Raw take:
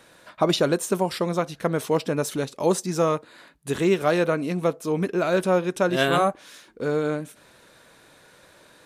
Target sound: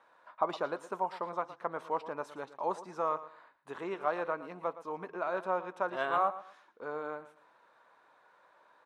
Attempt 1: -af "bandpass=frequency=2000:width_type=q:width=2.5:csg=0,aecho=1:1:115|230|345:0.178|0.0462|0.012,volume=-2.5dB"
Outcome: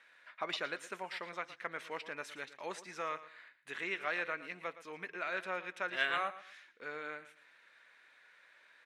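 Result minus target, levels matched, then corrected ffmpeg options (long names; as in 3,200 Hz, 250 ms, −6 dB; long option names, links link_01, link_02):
2,000 Hz band +9.0 dB
-af "bandpass=frequency=990:width_type=q:width=2.5:csg=0,aecho=1:1:115|230|345:0.178|0.0462|0.012,volume=-2.5dB"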